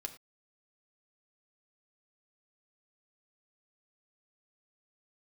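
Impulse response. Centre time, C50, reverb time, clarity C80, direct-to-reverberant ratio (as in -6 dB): 8 ms, 13.0 dB, not exponential, 16.0 dB, 5.5 dB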